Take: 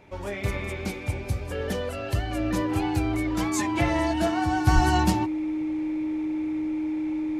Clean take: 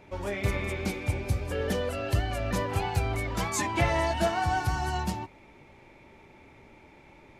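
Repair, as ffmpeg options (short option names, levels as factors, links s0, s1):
-filter_complex "[0:a]bandreject=f=310:w=30,asplit=3[s0][s1][s2];[s0]afade=t=out:st=4.74:d=0.02[s3];[s1]highpass=f=140:w=0.5412,highpass=f=140:w=1.3066,afade=t=in:st=4.74:d=0.02,afade=t=out:st=4.86:d=0.02[s4];[s2]afade=t=in:st=4.86:d=0.02[s5];[s3][s4][s5]amix=inputs=3:normalize=0,asetnsamples=n=441:p=0,asendcmd='4.67 volume volume -8dB',volume=1"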